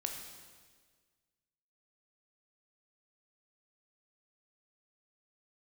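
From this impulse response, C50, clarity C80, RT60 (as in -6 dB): 4.5 dB, 6.0 dB, 1.6 s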